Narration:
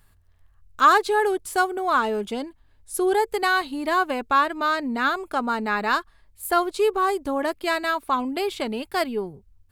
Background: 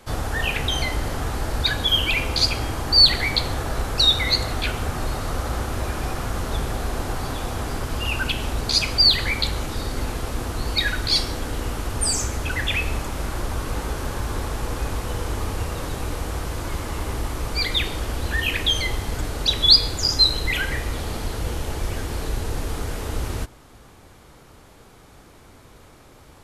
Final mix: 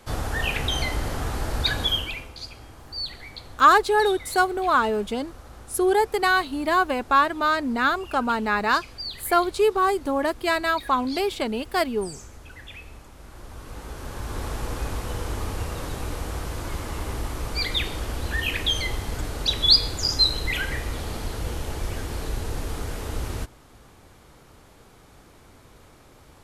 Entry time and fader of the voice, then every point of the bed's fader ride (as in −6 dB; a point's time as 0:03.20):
2.80 s, +1.0 dB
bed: 0:01.85 −2 dB
0:02.34 −18.5 dB
0:13.17 −18.5 dB
0:14.48 −3 dB